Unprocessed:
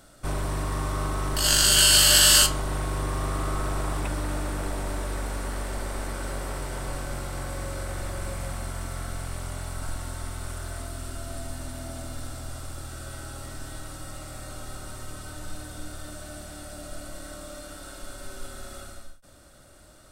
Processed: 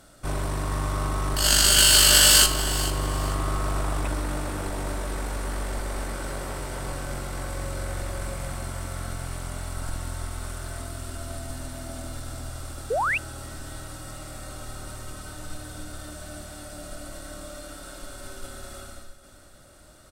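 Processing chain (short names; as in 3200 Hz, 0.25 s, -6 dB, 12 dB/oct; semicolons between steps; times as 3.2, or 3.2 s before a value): tube stage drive 10 dB, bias 0.75; on a send: feedback echo 0.442 s, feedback 29%, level -14 dB; on the sum: painted sound rise, 12.9–13.18, 410–2900 Hz -29 dBFS; gain +5 dB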